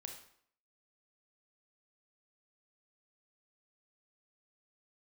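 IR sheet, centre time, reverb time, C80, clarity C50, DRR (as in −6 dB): 24 ms, 0.60 s, 9.5 dB, 6.0 dB, 3.0 dB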